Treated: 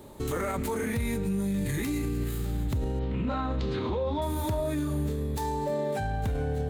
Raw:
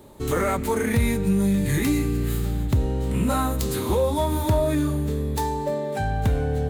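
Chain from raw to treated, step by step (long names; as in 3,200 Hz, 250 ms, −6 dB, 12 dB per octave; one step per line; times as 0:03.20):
0:02.99–0:04.22: low-pass filter 4,000 Hz 24 dB per octave
brickwall limiter −22.5 dBFS, peak gain reduction 10.5 dB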